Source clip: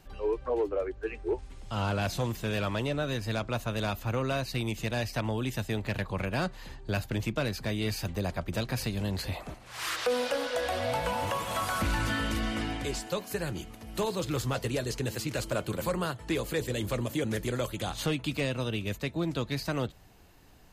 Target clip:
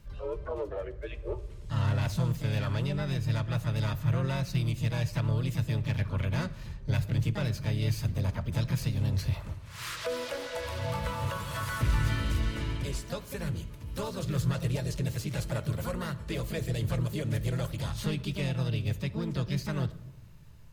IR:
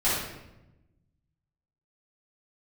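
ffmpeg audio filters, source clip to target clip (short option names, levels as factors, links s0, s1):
-filter_complex "[0:a]lowshelf=f=170:t=q:w=1.5:g=8.5,asplit=2[s0][s1];[s1]asetrate=58866,aresample=44100,atempo=0.749154,volume=0.562[s2];[s0][s2]amix=inputs=2:normalize=0,asuperstop=centerf=750:order=4:qfactor=5.9,asplit=2[s3][s4];[1:a]atrim=start_sample=2205[s5];[s4][s5]afir=irnorm=-1:irlink=0,volume=0.0447[s6];[s3][s6]amix=inputs=2:normalize=0,volume=0.501"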